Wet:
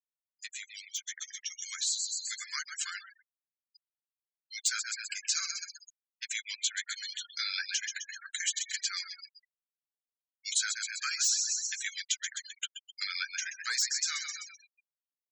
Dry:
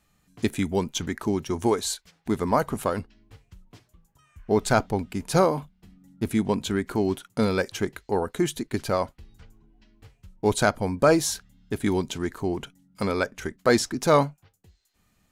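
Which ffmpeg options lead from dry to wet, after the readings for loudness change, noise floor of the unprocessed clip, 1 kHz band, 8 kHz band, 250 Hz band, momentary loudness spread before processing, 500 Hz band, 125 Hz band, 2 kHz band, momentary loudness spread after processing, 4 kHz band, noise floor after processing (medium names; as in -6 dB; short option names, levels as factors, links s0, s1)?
-7.0 dB, -68 dBFS, -20.5 dB, +4.0 dB, under -40 dB, 9 LU, under -40 dB, under -40 dB, -3.5 dB, 14 LU, +2.5 dB, under -85 dBFS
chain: -filter_complex "[0:a]asuperpass=centerf=3500:order=12:qfactor=0.59,highshelf=f=3000:g=9,bandreject=f=3700:w=26,asplit=8[s0][s1][s2][s3][s4][s5][s6][s7];[s1]adelay=128,afreqshift=45,volume=0.316[s8];[s2]adelay=256,afreqshift=90,volume=0.184[s9];[s3]adelay=384,afreqshift=135,volume=0.106[s10];[s4]adelay=512,afreqshift=180,volume=0.0617[s11];[s5]adelay=640,afreqshift=225,volume=0.0359[s12];[s6]adelay=768,afreqshift=270,volume=0.0207[s13];[s7]adelay=896,afreqshift=315,volume=0.012[s14];[s0][s8][s9][s10][s11][s12][s13][s14]amix=inputs=8:normalize=0,volume=15.8,asoftclip=hard,volume=0.0631,agate=range=0.0224:threshold=0.00112:ratio=3:detection=peak,acompressor=threshold=0.02:ratio=5,flanger=delay=5.7:depth=6.4:regen=-26:speed=0.34:shape=sinusoidal,afftfilt=real='re*gte(hypot(re,im),0.00794)':imag='im*gte(hypot(re,im),0.00794)':win_size=1024:overlap=0.75,aemphasis=mode=production:type=50fm,dynaudnorm=f=280:g=13:m=2.51,volume=0.668"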